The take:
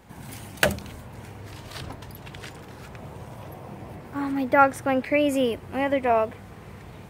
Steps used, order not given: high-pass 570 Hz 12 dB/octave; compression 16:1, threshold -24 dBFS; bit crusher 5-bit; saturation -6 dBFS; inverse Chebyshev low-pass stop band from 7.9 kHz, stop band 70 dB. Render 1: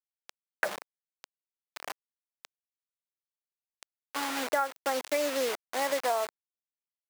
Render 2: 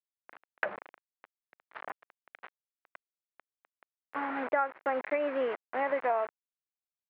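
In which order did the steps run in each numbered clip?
inverse Chebyshev low-pass > bit crusher > high-pass > compression > saturation; bit crusher > high-pass > compression > inverse Chebyshev low-pass > saturation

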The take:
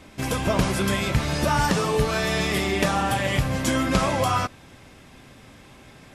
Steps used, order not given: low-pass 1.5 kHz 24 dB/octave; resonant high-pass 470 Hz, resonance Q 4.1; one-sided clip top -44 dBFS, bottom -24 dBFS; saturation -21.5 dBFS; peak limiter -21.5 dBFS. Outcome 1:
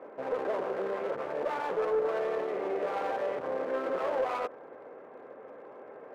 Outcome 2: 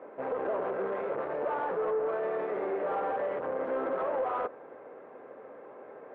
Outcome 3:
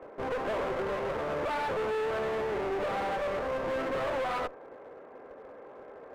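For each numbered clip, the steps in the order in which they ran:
peak limiter > low-pass > one-sided clip > resonant high-pass > saturation; one-sided clip > resonant high-pass > peak limiter > low-pass > saturation; resonant high-pass > saturation > low-pass > peak limiter > one-sided clip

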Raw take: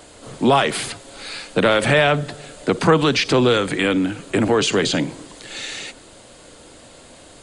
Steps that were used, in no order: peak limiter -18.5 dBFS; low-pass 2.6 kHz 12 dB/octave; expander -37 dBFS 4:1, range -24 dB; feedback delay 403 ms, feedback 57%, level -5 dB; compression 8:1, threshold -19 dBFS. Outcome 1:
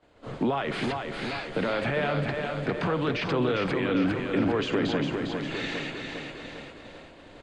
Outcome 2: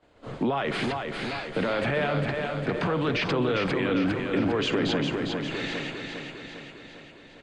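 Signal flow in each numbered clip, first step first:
compression > peak limiter > feedback delay > expander > low-pass; expander > low-pass > peak limiter > feedback delay > compression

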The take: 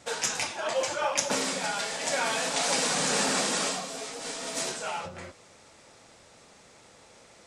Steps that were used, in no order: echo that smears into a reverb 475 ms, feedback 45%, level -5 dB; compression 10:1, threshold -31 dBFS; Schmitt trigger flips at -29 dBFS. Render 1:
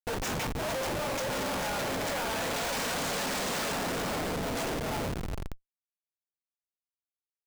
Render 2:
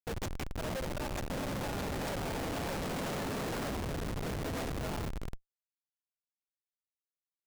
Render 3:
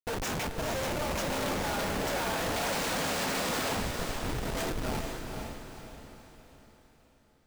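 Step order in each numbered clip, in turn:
echo that smears into a reverb > Schmitt trigger > compression; compression > echo that smears into a reverb > Schmitt trigger; Schmitt trigger > compression > echo that smears into a reverb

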